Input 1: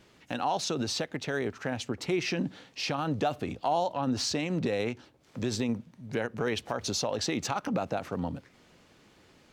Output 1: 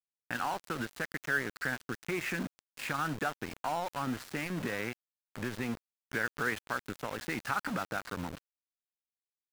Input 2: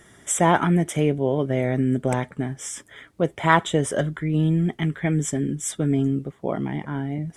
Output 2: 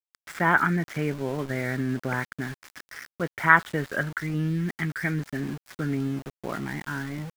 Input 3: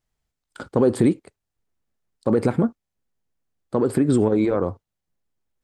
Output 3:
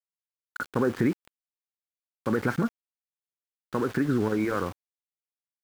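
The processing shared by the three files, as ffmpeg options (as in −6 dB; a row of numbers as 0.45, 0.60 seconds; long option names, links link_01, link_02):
-filter_complex "[0:a]firequalizer=gain_entry='entry(240,0);entry(630,-4);entry(1500,14);entry(3100,-4);entry(5900,-15);entry(10000,-29)':delay=0.05:min_phase=1,asplit=2[link_01][link_02];[link_02]acompressor=threshold=-39dB:ratio=4,volume=-2.5dB[link_03];[link_01][link_03]amix=inputs=2:normalize=0,aeval=exprs='val(0)*gte(abs(val(0)),0.0316)':channel_layout=same,volume=-7dB"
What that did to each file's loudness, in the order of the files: −4.5, −4.0, −7.0 LU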